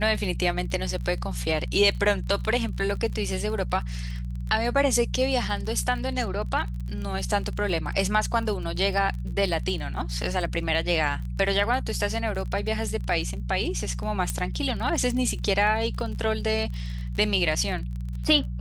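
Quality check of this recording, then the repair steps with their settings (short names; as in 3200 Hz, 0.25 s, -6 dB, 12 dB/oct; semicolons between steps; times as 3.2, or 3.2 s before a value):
crackle 29/s -33 dBFS
hum 60 Hz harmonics 3 -31 dBFS
14.3 pop -13 dBFS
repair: de-click; de-hum 60 Hz, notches 3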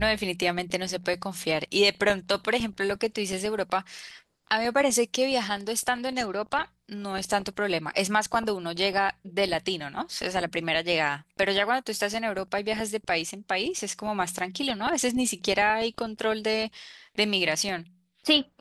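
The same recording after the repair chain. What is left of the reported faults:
none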